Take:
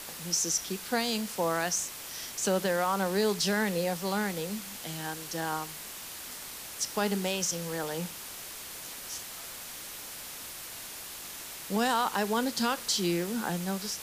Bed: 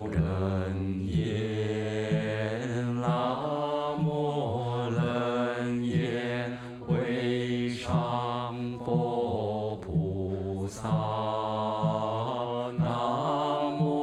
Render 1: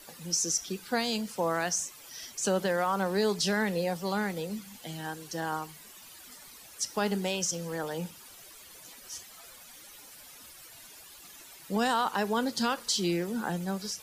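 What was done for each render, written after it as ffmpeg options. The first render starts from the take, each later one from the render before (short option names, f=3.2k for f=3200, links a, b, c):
-af "afftdn=nr=13:nf=-43"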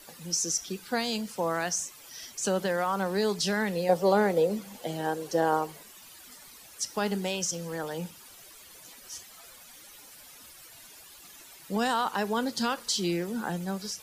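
-filter_complex "[0:a]asettb=1/sr,asplit=3[a][b][c];[a]atrim=end=3.894[d];[b]atrim=start=3.89:end=5.83,asetpts=PTS-STARTPTS,afade=t=in:d=0.004:c=qsin,afade=t=out:st=1.936:d=0.004:c=qsin,equalizer=f=520:w=0.9:g=14[e];[c]atrim=start=5.826[f];[d][e]acrossfade=d=0.004:c1=hsin:c2=qsin[g];[g][f]acrossfade=d=0.004:c1=qsin:c2=hsin"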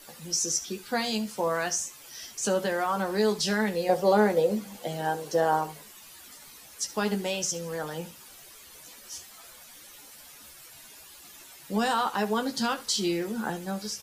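-filter_complex "[0:a]asplit=2[a][b];[b]adelay=14,volume=-5.5dB[c];[a][c]amix=inputs=2:normalize=0,aecho=1:1:71:0.133"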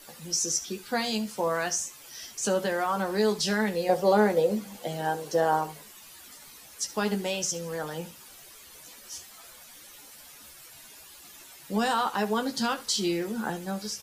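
-af anull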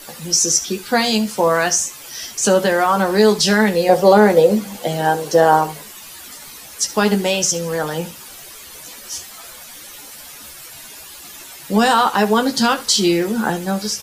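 -af "volume=12dB,alimiter=limit=-1dB:level=0:latency=1"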